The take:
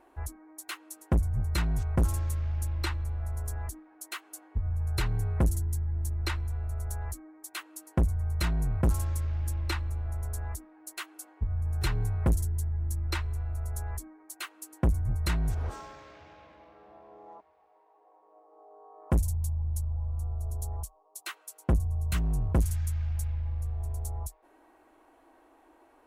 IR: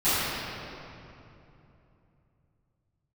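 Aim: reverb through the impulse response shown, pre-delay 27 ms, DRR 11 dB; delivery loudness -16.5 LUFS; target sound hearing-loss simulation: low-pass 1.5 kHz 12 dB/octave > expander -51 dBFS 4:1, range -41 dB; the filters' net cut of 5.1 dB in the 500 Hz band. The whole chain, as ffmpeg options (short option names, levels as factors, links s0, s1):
-filter_complex "[0:a]equalizer=f=500:t=o:g=-7,asplit=2[s0][s1];[1:a]atrim=start_sample=2205,adelay=27[s2];[s1][s2]afir=irnorm=-1:irlink=0,volume=0.0398[s3];[s0][s3]amix=inputs=2:normalize=0,lowpass=1500,agate=range=0.00891:threshold=0.00282:ratio=4,volume=5.31"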